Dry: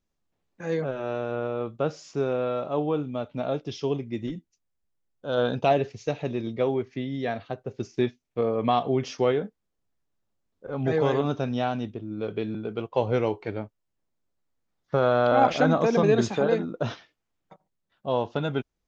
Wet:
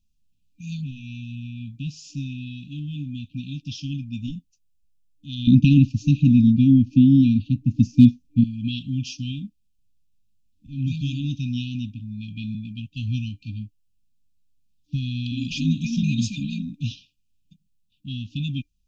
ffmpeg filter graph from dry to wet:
-filter_complex "[0:a]asettb=1/sr,asplit=3[s0][s1][s2];[s0]atrim=end=5.474[s3];[s1]atrim=start=5.47:end=8.44,asetpts=PTS-STARTPTS,afade=t=in:d=0.004:c=qsin,afade=t=out:st=2.966:d=0.004:c=qsin,lowshelf=f=370:t=q:w=3:g=11,asoftclip=type=hard:threshold=0.631[s4];[s2]atrim=start=8.436[s5];[s3][s4]acrossfade=d=0.004:c1=hsin:c2=qsin[s6];[s6][s5]acrossfade=d=0.004:c1=qsin:c2=hsin,equalizer=f=330:w=1.6:g=-6.5,afftfilt=real='re*(1-between(b*sr/4096,300,2400))':imag='im*(1-between(b*sr/4096,300,2400))':win_size=4096:overlap=0.75,lowshelf=f=64:g=10,volume=1.58"

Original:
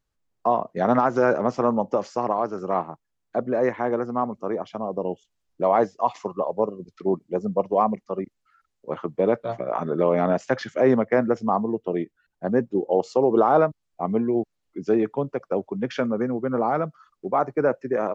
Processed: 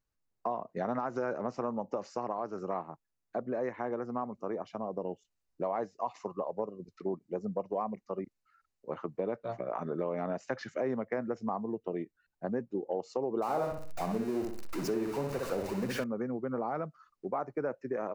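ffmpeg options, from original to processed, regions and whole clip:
-filter_complex "[0:a]asettb=1/sr,asplit=3[s0][s1][s2];[s0]atrim=end=13.424[s3];[s1]atrim=start=13.42:end=16.04,asetpts=PTS-STARTPTS,afade=t=in:d=0.004:c=qsin,afade=t=out:st=2.616:d=0.004:c=qsin,aeval=exprs='val(0)+0.5*0.0501*sgn(val(0))':c=same,asplit=2[s4][s5];[s5]adelay=62,lowpass=f=2300:p=1,volume=0.631,asplit=2[s6][s7];[s7]adelay=62,lowpass=f=2300:p=1,volume=0.35,asplit=2[s8][s9];[s9]adelay=62,lowpass=f=2300:p=1,volume=0.35,asplit=2[s10][s11];[s11]adelay=62,lowpass=f=2300:p=1,volume=0.35[s12];[s4][s6][s8][s10][s12]amix=inputs=5:normalize=0,atrim=end_sample=115542[s13];[s2]atrim=start=16.036[s14];[s3][s13]acrossfade=d=0.004:c1=hsin:c2=qsin[s15];[s15][s14]acrossfade=d=0.004:c1=qsin:c2=hsin,bandreject=f=3300:w=7.3,acompressor=threshold=0.0562:ratio=3,volume=0.473"

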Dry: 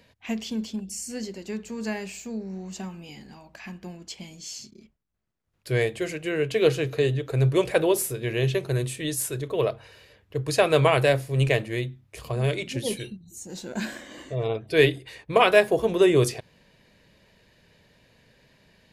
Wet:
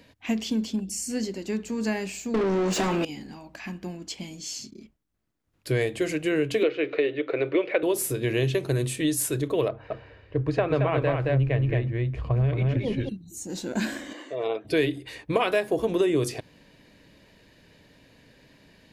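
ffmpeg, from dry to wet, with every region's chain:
-filter_complex "[0:a]asettb=1/sr,asplit=3[s0][s1][s2];[s0]atrim=end=2.344[s3];[s1]atrim=start=2.34:end=3.05,asetpts=PTS-STARTPTS,afade=t=in:d=0.004:c=qsin,afade=t=out:st=0.706:d=0.004:c=qsin,equalizer=f=460:t=o:w=1.3:g=8.5,asplit=2[s4][s5];[s5]highpass=f=720:p=1,volume=31.6,asoftclip=type=tanh:threshold=0.112[s6];[s4][s6]amix=inputs=2:normalize=0,lowpass=f=3800:p=1,volume=0.501[s7];[s2]atrim=start=3.046[s8];[s3][s7]acrossfade=d=0.004:c1=hsin:c2=qsin[s9];[s9][s8]acrossfade=d=0.004:c1=qsin:c2=hsin,asettb=1/sr,asplit=3[s10][s11][s12];[s10]atrim=end=6.634[s13];[s11]atrim=start=6.63:end=7.83,asetpts=PTS-STARTPTS,afade=t=in:d=0.004:c=qsin,afade=t=out:st=1.196:d=0.004:c=qsin,highpass=f=240:w=0.5412,highpass=f=240:w=1.3066,equalizer=f=250:t=q:w=4:g=-10,equalizer=f=350:t=q:w=4:g=3,equalizer=f=540:t=q:w=4:g=5,equalizer=f=860:t=q:w=4:g=-4,equalizer=f=1500:t=q:w=4:g=5,equalizer=f=2200:t=q:w=4:g=8,lowpass=f=3500:w=0.5412,lowpass=f=3500:w=1.3066,bandreject=f=1600:w=15[s14];[s12]atrim=start=7.826[s15];[s13][s14]acrossfade=d=0.004:c1=hsin:c2=qsin[s16];[s16][s15]acrossfade=d=0.004:c1=qsin:c2=hsin,asettb=1/sr,asplit=3[s17][s18][s19];[s17]atrim=end=9.684[s20];[s18]atrim=start=9.68:end=13.09,asetpts=PTS-STARTPTS,afade=t=in:d=0.004:c=qsin,afade=t=out:st=3.406:d=0.004:c=qsin,lowpass=1900,aecho=1:1:222:0.631,atrim=end_sample=150381,asubboost=boost=7:cutoff=120[s21];[s19]atrim=start=13.086[s22];[s20][s21]acrossfade=d=0.004:c1=hsin:c2=qsin[s23];[s23][s22]acrossfade=d=0.004:c1=qsin:c2=hsin,asettb=1/sr,asplit=3[s24][s25][s26];[s24]atrim=end=14.134[s27];[s25]atrim=start=14.13:end=14.65,asetpts=PTS-STARTPTS,afade=t=in:d=0.004:c=qsin,afade=t=out:st=0.516:d=0.004:c=qsin,highpass=460,highshelf=f=6500:g=-12[s28];[s26]atrim=start=14.646[s29];[s27][s28]acrossfade=d=0.004:c1=hsin:c2=qsin[s30];[s30][s29]acrossfade=d=0.004:c1=qsin:c2=hsin,equalizer=f=290:w=4.1:g=9.5,acompressor=threshold=0.0708:ratio=5,volume=1.33"

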